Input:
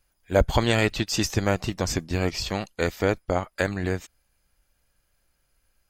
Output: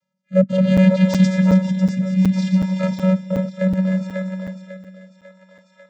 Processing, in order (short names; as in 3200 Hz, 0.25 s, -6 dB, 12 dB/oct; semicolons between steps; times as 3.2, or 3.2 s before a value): regenerating reverse delay 0.154 s, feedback 57%, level -8 dB; 1.91–2.63 brick-wall FIR band-stop 340–2100 Hz; in parallel at -6 dB: sample gate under -21 dBFS; on the sum: vocoder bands 16, square 187 Hz; thinning echo 0.546 s, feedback 57%, high-pass 350 Hz, level -7.5 dB; rotary speaker horn 0.65 Hz; crackling interface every 0.37 s, samples 256, zero, from 0.77; gain +7.5 dB